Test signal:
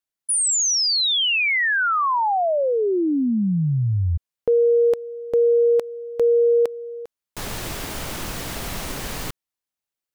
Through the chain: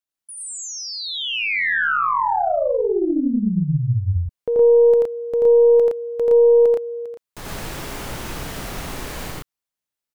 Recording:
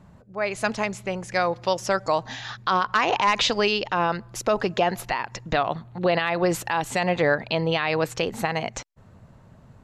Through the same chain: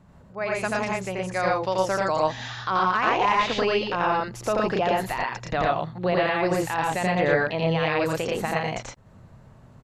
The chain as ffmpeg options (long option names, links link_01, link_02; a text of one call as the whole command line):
ffmpeg -i in.wav -filter_complex "[0:a]acrossover=split=2500[link_01][link_02];[link_02]acompressor=threshold=-34dB:ratio=4:attack=1:release=60[link_03];[link_01][link_03]amix=inputs=2:normalize=0,aecho=1:1:84.55|116.6:0.891|0.891,aeval=exprs='0.631*(cos(1*acos(clip(val(0)/0.631,-1,1)))-cos(1*PI/2))+0.0316*(cos(2*acos(clip(val(0)/0.631,-1,1)))-cos(2*PI/2))':channel_layout=same,volume=-3.5dB" out.wav